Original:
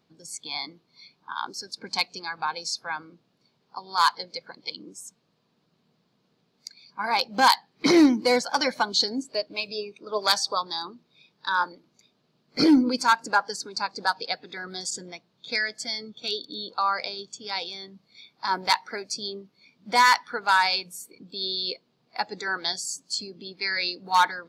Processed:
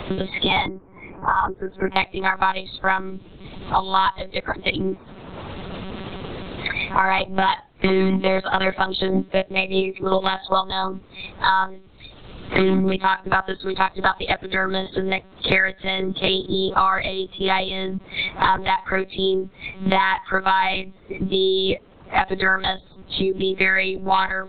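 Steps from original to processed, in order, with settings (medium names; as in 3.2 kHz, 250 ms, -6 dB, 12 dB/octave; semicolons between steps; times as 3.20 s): 0.66–1.97 s: Gaussian low-pass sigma 5.5 samples; 2.65–3.84 s: bass shelf 270 Hz +12 dB; monotone LPC vocoder at 8 kHz 190 Hz; loudness maximiser +15 dB; three bands compressed up and down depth 100%; trim -5 dB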